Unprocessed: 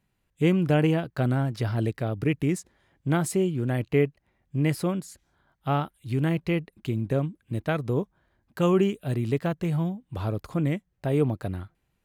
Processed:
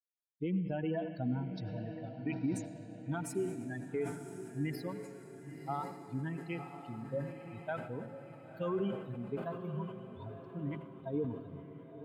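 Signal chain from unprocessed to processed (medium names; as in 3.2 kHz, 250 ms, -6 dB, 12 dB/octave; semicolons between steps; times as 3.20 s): expander on every frequency bin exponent 3; high-pass 210 Hz 12 dB/octave; treble shelf 2.9 kHz -11 dB; peak limiter -27 dBFS, peak gain reduction 11 dB; echo that smears into a reverb 1020 ms, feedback 51%, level -9.5 dB; on a send at -12 dB: reverberation RT60 2.3 s, pre-delay 76 ms; on the sum: decay stretcher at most 76 dB/s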